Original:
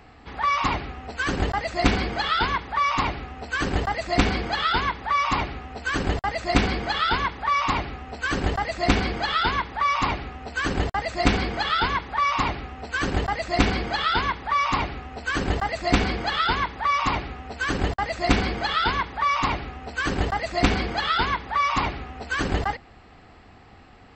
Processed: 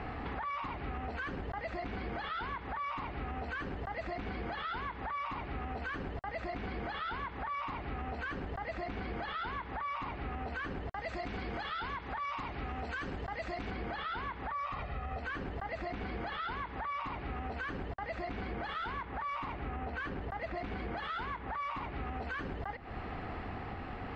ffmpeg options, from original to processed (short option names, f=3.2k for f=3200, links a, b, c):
-filter_complex "[0:a]asettb=1/sr,asplit=3[a][b][c];[a]atrim=end=10.904[d];[b]atrim=start=10.9:end=13.71,asetpts=PTS-STARTPTS,afade=t=in:d=0.004:c=qsin,afade=t=out:st=2.806:d=0.004:c=qsin,aemphasis=mode=production:type=50fm[e];[c]atrim=start=13.706[f];[d][e]acrossfade=d=0.004:c1=hsin:c2=qsin[g];[g][f]acrossfade=d=0.004:c1=qsin:c2=hsin,asettb=1/sr,asplit=3[h][i][j];[h]atrim=end=14.514[k];[i]atrim=start=14.51:end=15.2,asetpts=PTS-STARTPTS,afade=t=in:d=0.004:c=qsin,afade=t=out:st=0.686:d=0.004:c=qsin,aecho=1:1:1.6:0.64,atrim=end_sample=30429[l];[j]atrim=start=15.196[m];[k][l]acrossfade=d=0.004:c1=hsin:c2=qsin[n];[n][m]acrossfade=d=0.004:c1=qsin:c2=hsin,asettb=1/sr,asplit=3[o][p][q];[o]atrim=end=18.454[r];[p]atrim=start=18.45:end=21.93,asetpts=PTS-STARTPTS,afade=t=in:d=0.004:c=qsin,afade=t=out:st=3.476:d=0.004:c=qsin,adynamicsmooth=sensitivity=6.5:basefreq=3.2k[s];[q]atrim=start=21.926[t];[r][s]acrossfade=d=0.004:c1=hsin:c2=qsin[u];[u][t]acrossfade=d=0.004:c1=qsin:c2=hsin,lowpass=2.4k,acompressor=threshold=-36dB:ratio=6,alimiter=level_in=15.5dB:limit=-24dB:level=0:latency=1:release=203,volume=-15.5dB,volume=9dB"